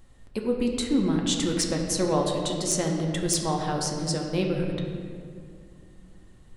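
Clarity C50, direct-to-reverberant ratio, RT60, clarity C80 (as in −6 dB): 3.0 dB, 0.0 dB, 2.1 s, 4.5 dB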